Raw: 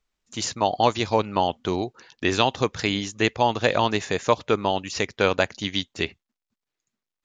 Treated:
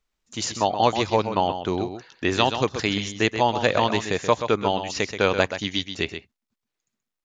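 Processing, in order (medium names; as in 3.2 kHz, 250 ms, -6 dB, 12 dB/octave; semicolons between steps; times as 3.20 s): 1.40–2.38 s: dynamic bell 5 kHz, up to -4 dB, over -42 dBFS, Q 0.84; on a send: delay 129 ms -9 dB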